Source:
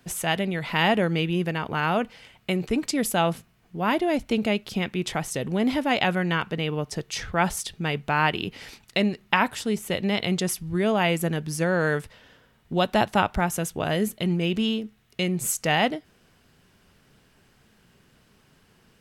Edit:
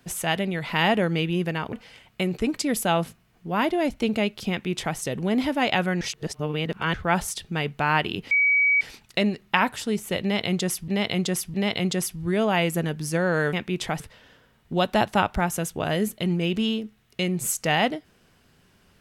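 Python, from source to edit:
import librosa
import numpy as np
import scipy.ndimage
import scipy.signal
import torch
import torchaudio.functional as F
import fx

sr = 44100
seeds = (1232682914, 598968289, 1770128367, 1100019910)

y = fx.edit(x, sr, fx.cut(start_s=1.73, length_s=0.29),
    fx.duplicate(start_s=4.79, length_s=0.47, to_s=12.0),
    fx.reverse_span(start_s=6.3, length_s=0.93),
    fx.insert_tone(at_s=8.6, length_s=0.5, hz=2270.0, db=-16.5),
    fx.repeat(start_s=10.01, length_s=0.66, count=3), tone=tone)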